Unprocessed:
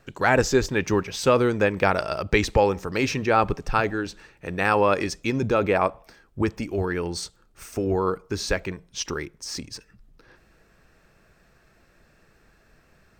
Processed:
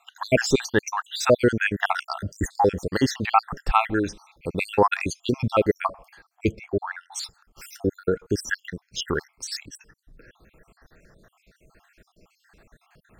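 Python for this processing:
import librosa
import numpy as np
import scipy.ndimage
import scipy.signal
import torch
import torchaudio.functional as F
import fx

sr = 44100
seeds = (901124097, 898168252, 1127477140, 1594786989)

y = fx.spec_dropout(x, sr, seeds[0], share_pct=64)
y = fx.lowpass(y, sr, hz=1300.0, slope=6, at=(6.52, 7.12))
y = y * librosa.db_to_amplitude(5.0)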